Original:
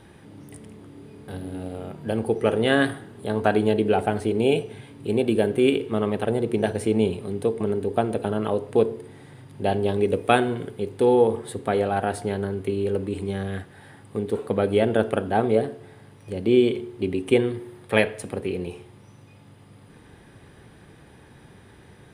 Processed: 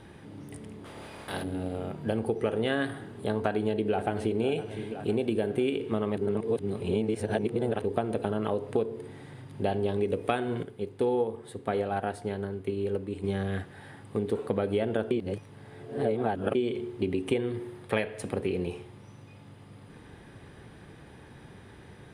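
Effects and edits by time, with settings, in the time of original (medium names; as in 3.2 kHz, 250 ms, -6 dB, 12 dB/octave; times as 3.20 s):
0.84–1.42 s: spectral peaks clipped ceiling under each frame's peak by 21 dB
3.45–4.42 s: echo throw 510 ms, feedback 55%, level -15 dB
6.17–7.84 s: reverse
10.63–13.24 s: upward expansion, over -30 dBFS
15.11–16.55 s: reverse
whole clip: treble shelf 9.2 kHz -7.5 dB; compression, threshold -24 dBFS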